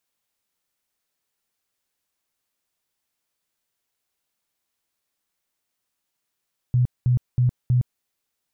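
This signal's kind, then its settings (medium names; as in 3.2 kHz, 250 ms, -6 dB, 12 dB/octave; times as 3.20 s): tone bursts 124 Hz, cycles 14, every 0.32 s, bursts 4, -15 dBFS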